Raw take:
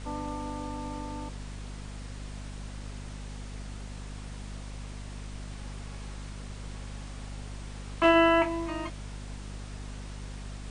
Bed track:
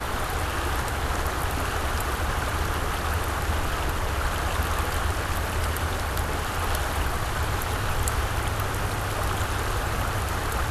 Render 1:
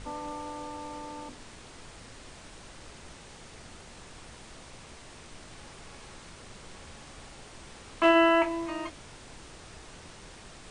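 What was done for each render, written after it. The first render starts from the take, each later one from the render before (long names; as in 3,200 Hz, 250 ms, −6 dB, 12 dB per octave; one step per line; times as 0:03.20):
mains-hum notches 50/100/150/200/250/300 Hz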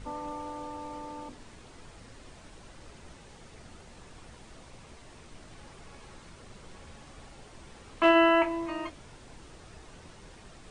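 broadband denoise 6 dB, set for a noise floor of −49 dBFS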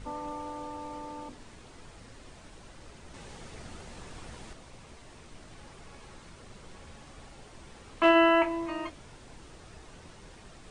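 0:03.14–0:04.53: clip gain +5 dB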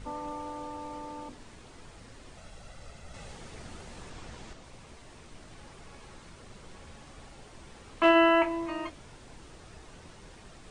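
0:02.37–0:03.32: comb filter 1.5 ms, depth 53%
0:04.10–0:04.64: low-pass filter 8,400 Hz 24 dB per octave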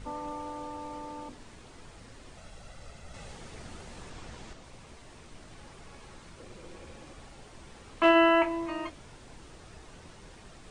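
0:06.38–0:07.13: hollow resonant body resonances 340/500/2,400 Hz, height 9 dB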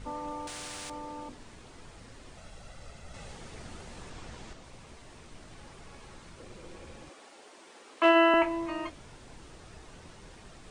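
0:00.47–0:00.90: every bin compressed towards the loudest bin 4 to 1
0:07.09–0:08.34: high-pass filter 290 Hz 24 dB per octave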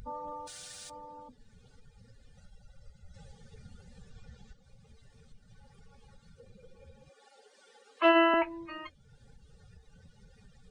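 spectral dynamics exaggerated over time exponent 2
upward compression, threshold −48 dBFS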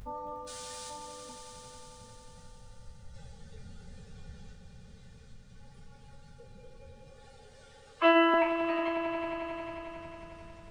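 peak hold with a decay on every bin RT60 0.36 s
echo that builds up and dies away 90 ms, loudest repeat 5, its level −12 dB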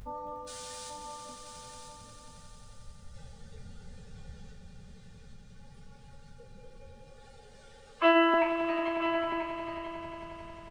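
single-tap delay 985 ms −9.5 dB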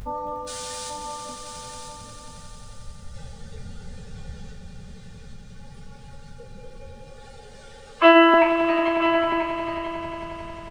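level +9.5 dB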